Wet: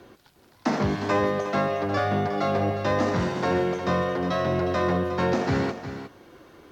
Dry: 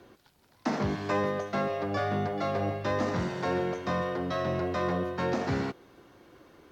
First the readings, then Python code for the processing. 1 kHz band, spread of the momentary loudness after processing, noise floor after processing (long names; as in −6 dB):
+5.5 dB, 5 LU, −57 dBFS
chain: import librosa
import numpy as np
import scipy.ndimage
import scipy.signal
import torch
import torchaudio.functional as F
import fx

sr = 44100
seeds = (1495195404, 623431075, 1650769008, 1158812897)

y = x + 10.0 ** (-10.5 / 20.0) * np.pad(x, (int(360 * sr / 1000.0), 0))[:len(x)]
y = y * librosa.db_to_amplitude(5.0)